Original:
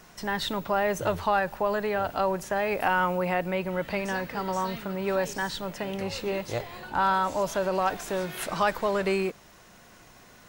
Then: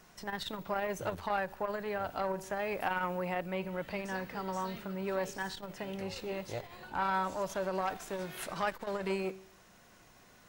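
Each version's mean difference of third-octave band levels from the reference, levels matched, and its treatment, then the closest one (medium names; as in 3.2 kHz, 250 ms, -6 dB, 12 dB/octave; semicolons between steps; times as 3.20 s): 1.0 dB: feedback comb 190 Hz, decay 0.61 s, harmonics all, mix 40%; transformer saturation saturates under 770 Hz; trim -3 dB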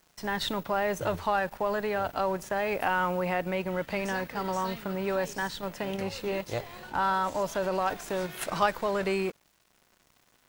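2.5 dB: in parallel at +0.5 dB: level held to a coarse grid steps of 11 dB; on the sum: crossover distortion -44 dBFS; trim -5 dB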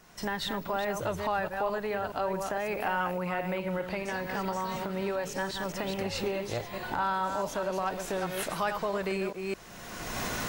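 4.5 dB: chunks repeated in reverse 212 ms, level -7 dB; recorder AGC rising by 27 dB/s; trim -6 dB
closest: first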